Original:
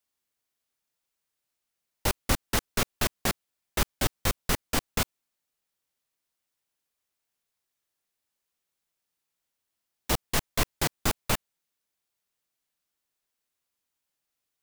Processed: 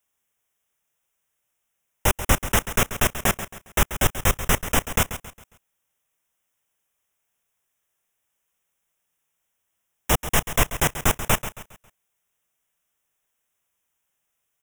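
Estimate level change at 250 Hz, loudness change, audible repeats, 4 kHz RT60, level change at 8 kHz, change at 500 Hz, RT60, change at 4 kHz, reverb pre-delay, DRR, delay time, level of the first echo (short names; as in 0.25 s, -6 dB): +4.5 dB, +6.5 dB, 3, none, +7.0 dB, +6.5 dB, none, +3.0 dB, none, none, 0.136 s, -12.0 dB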